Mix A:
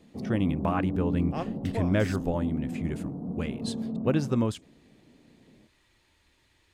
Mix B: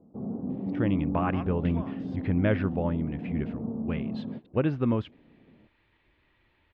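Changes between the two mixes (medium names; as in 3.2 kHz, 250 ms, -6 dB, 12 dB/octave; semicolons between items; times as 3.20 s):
speech: entry +0.50 s; second sound: add high-pass 950 Hz; master: add low-pass 3 kHz 24 dB/octave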